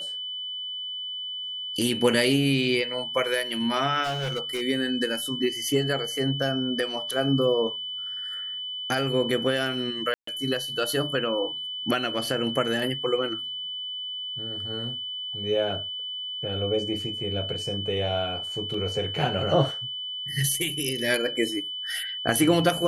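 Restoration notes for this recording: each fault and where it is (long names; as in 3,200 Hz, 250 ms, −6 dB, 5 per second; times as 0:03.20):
whistle 3,000 Hz −31 dBFS
0:04.03–0:04.62: clipping −25 dBFS
0:10.14–0:10.27: drop-out 134 ms
0:18.74: drop-out 3.7 ms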